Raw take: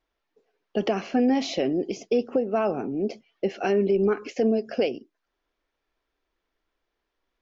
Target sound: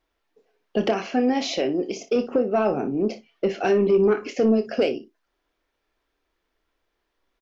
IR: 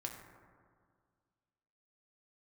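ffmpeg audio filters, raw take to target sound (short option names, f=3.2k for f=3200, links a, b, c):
-filter_complex "[0:a]asettb=1/sr,asplit=3[a][b][c];[a]atrim=end=0.914[d];[b]atrim=start=0.91:end=2.16,asetpts=PTS-STARTPTS,afade=t=in:d=0.004:c=qsin,afade=t=out:st=1.246:d=0.004:c=qsin,lowshelf=f=270:g=-8[e];[c]atrim=start=2.156[f];[d][e]acrossfade=d=0.004:c1=hsin:c2=qsin[g];[g][f]acrossfade=d=0.004:c1=qsin:c2=hsin,asoftclip=type=tanh:threshold=-13.5dB,aecho=1:1:28|59:0.316|0.178,volume=3.5dB"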